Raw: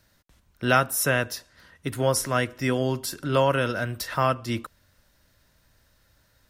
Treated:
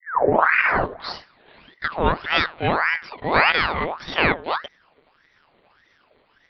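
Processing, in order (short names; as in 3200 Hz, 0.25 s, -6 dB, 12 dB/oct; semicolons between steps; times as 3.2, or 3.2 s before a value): tape start at the beginning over 2.12 s; monotone LPC vocoder at 8 kHz 160 Hz; ring modulator with a swept carrier 1200 Hz, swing 65%, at 1.7 Hz; gain +6.5 dB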